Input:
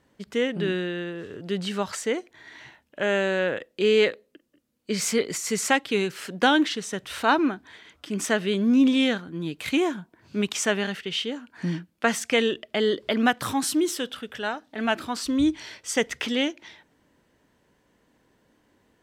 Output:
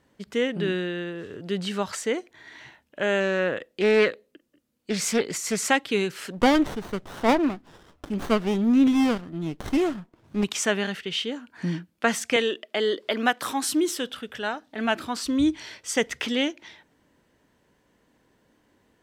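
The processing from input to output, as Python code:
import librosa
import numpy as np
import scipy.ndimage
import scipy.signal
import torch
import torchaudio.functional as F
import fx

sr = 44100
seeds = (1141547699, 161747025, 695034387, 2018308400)

y = fx.doppler_dist(x, sr, depth_ms=0.21, at=(3.2, 5.64))
y = fx.running_max(y, sr, window=17, at=(6.32, 10.43), fade=0.02)
y = fx.highpass(y, sr, hz=300.0, slope=12, at=(12.36, 13.69))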